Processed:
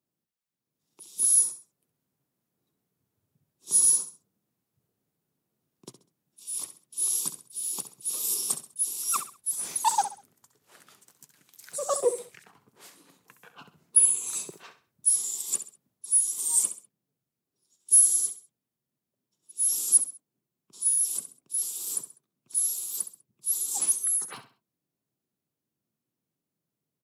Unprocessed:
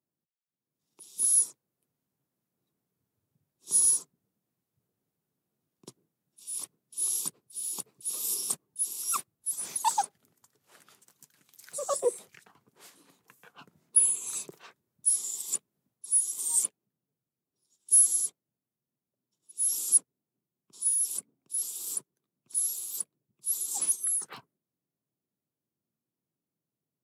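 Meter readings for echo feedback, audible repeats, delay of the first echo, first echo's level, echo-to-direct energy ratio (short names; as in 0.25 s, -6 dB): 32%, 3, 66 ms, -11.5 dB, -11.0 dB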